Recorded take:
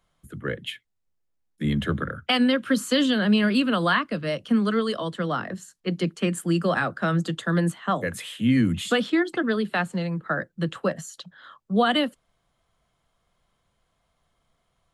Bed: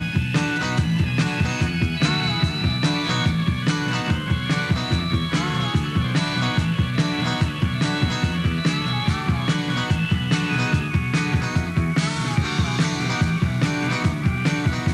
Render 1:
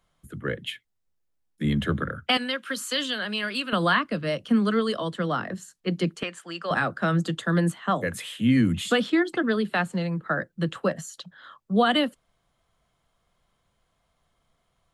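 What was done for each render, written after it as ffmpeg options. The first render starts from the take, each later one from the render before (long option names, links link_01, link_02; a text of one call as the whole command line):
ffmpeg -i in.wav -filter_complex "[0:a]asettb=1/sr,asplit=3[link_01][link_02][link_03];[link_01]atrim=end=2.374[link_04];[link_02]atrim=start=2.37:end=3.73,asetpts=PTS-STARTPTS,afade=type=in:duration=0.004:curve=qsin,afade=type=out:start_time=1.356:duration=0.004:curve=qsin,highpass=frequency=1200:poles=1[link_05];[link_03]atrim=start=3.726[link_06];[link_04][link_05]acrossfade=duration=0.004:curve1=hsin:curve2=qsin[link_07];[link_07][link_06]acrossfade=duration=0.004:curve1=qsin:curve2=hsin,asettb=1/sr,asplit=3[link_08][link_09][link_10];[link_08]atrim=end=6.234[link_11];[link_09]atrim=start=6.23:end=6.71,asetpts=PTS-STARTPTS,afade=type=in:duration=0.004:curve=qsin,afade=type=out:start_time=0.476:duration=0.004:curve=qsin,acrossover=split=560 6300:gain=0.0794 1 0.0708[link_12][link_13][link_14];[link_12][link_13][link_14]amix=inputs=3:normalize=0[link_15];[link_10]atrim=start=6.706[link_16];[link_11][link_15]acrossfade=duration=0.004:curve1=hsin:curve2=qsin[link_17];[link_17][link_16]acrossfade=duration=0.004:curve1=qsin:curve2=hsin" out.wav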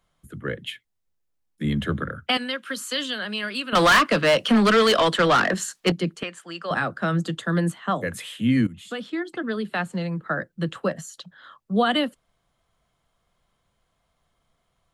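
ffmpeg -i in.wav -filter_complex "[0:a]asettb=1/sr,asplit=3[link_01][link_02][link_03];[link_01]atrim=end=3.754[link_04];[link_02]atrim=start=3.75:end=5.92,asetpts=PTS-STARTPTS,afade=type=in:duration=0.004:curve=qsin,afade=type=out:start_time=2.166:duration=0.004:curve=qsin,asplit=2[link_05][link_06];[link_06]highpass=frequency=720:poles=1,volume=24dB,asoftclip=type=tanh:threshold=-9dB[link_07];[link_05][link_07]amix=inputs=2:normalize=0,lowpass=frequency=6800:poles=1,volume=-6dB[link_08];[link_03]atrim=start=5.916[link_09];[link_04][link_08]acrossfade=duration=0.004:curve1=hsin:curve2=qsin[link_10];[link_10][link_09]acrossfade=duration=0.004:curve1=qsin:curve2=hsin,asplit=2[link_11][link_12];[link_11]atrim=end=8.67,asetpts=PTS-STARTPTS,afade=type=out:start_time=8.666:duration=0.004:curve=hsin:silence=0.149624[link_13];[link_12]atrim=start=8.67,asetpts=PTS-STARTPTS,afade=type=in:duration=1.38:silence=0.149624[link_14];[link_13][link_14]concat=n=2:v=0:a=1" out.wav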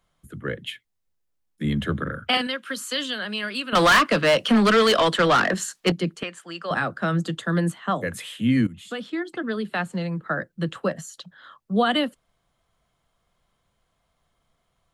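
ffmpeg -i in.wav -filter_complex "[0:a]asettb=1/sr,asplit=3[link_01][link_02][link_03];[link_01]atrim=end=2.024[link_04];[link_02]atrim=start=2.02:end=2.47,asetpts=PTS-STARTPTS,afade=type=in:duration=0.004:curve=qsin,afade=type=out:start_time=0.446:duration=0.004:curve=qsin,asplit=2[link_05][link_06];[link_06]adelay=41,volume=-3.5dB[link_07];[link_05][link_07]amix=inputs=2:normalize=0,atrim=end_sample=19845[link_08];[link_03]atrim=start=2.466[link_09];[link_04][link_08]acrossfade=duration=0.004:curve1=hsin:curve2=qsin[link_10];[link_10][link_09]acrossfade=duration=0.004:curve1=qsin:curve2=hsin" out.wav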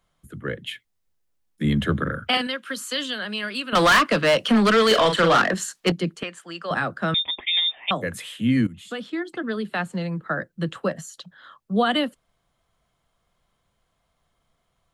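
ffmpeg -i in.wav -filter_complex "[0:a]asettb=1/sr,asplit=3[link_01][link_02][link_03];[link_01]atrim=end=4.874[link_04];[link_02]atrim=start=4.87:end=5.42,asetpts=PTS-STARTPTS,afade=type=in:duration=0.004:curve=qsin,afade=type=out:start_time=0.546:duration=0.004:curve=qsin,asplit=2[link_05][link_06];[link_06]adelay=41,volume=-5.5dB[link_07];[link_05][link_07]amix=inputs=2:normalize=0,atrim=end_sample=24255[link_08];[link_03]atrim=start=5.416[link_09];[link_04][link_08]acrossfade=duration=0.004:curve1=hsin:curve2=qsin[link_10];[link_10][link_09]acrossfade=duration=0.004:curve1=qsin:curve2=hsin,asettb=1/sr,asplit=3[link_11][link_12][link_13];[link_11]atrim=end=7.144[link_14];[link_12]atrim=start=7.14:end=7.91,asetpts=PTS-STARTPTS,afade=type=in:duration=0.004:curve=qsin,afade=type=out:start_time=0.766:duration=0.004:curve=qsin,lowpass=frequency=3200:width_type=q:width=0.5098,lowpass=frequency=3200:width_type=q:width=0.6013,lowpass=frequency=3200:width_type=q:width=0.9,lowpass=frequency=3200:width_type=q:width=2.563,afreqshift=-3800[link_15];[link_13]atrim=start=7.906[link_16];[link_14][link_15]acrossfade=duration=0.004:curve1=hsin:curve2=qsin[link_17];[link_17][link_16]acrossfade=duration=0.004:curve1=qsin:curve2=hsin,asplit=3[link_18][link_19][link_20];[link_18]atrim=end=0.712[link_21];[link_19]atrim=start=0.708:end=2.282,asetpts=PTS-STARTPTS,volume=3dB[link_22];[link_20]atrim=start=2.278[link_23];[link_21][link_22]acrossfade=duration=0.004:curve1=hsin:curve2=hsin[link_24];[link_24][link_23]acrossfade=duration=0.004:curve1=hsin:curve2=hsin" out.wav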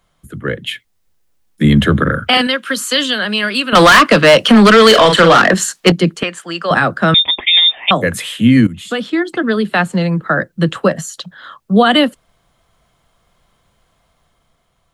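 ffmpeg -i in.wav -af "dynaudnorm=framelen=150:gausssize=11:maxgain=3.5dB,alimiter=level_in=9dB:limit=-1dB:release=50:level=0:latency=1" out.wav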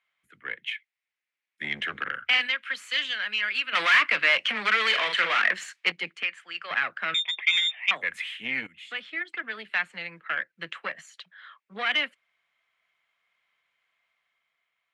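ffmpeg -i in.wav -af "aeval=exprs='(tanh(1.78*val(0)+0.6)-tanh(0.6))/1.78':channel_layout=same,bandpass=frequency=2200:width_type=q:width=3.7:csg=0" out.wav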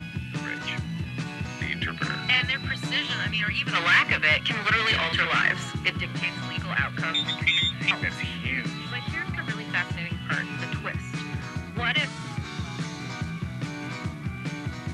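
ffmpeg -i in.wav -i bed.wav -filter_complex "[1:a]volume=-11.5dB[link_01];[0:a][link_01]amix=inputs=2:normalize=0" out.wav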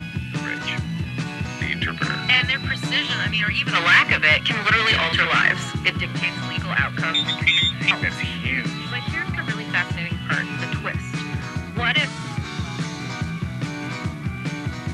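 ffmpeg -i in.wav -af "volume=5dB" out.wav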